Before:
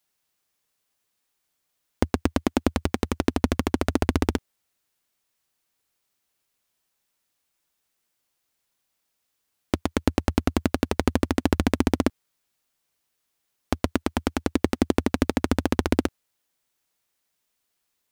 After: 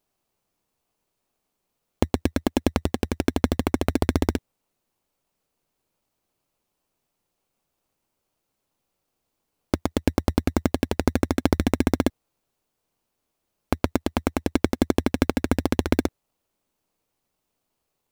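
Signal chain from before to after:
gain on one half-wave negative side −3 dB
in parallel at −2 dB: sample-rate reduction 1,900 Hz, jitter 0%
on the sum: level −3 dB

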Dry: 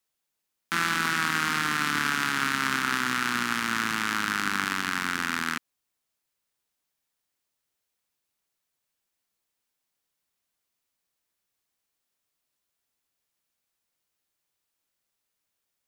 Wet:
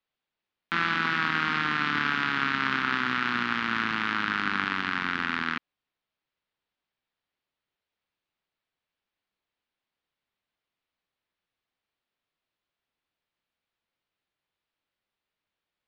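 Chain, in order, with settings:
low-pass filter 3,900 Hz 24 dB per octave

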